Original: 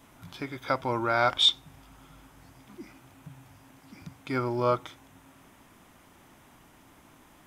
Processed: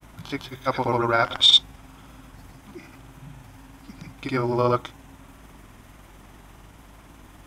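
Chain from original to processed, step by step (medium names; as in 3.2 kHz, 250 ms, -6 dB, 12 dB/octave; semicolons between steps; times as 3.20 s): hum 50 Hz, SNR 23 dB; granulator, pitch spread up and down by 0 st; trim +7 dB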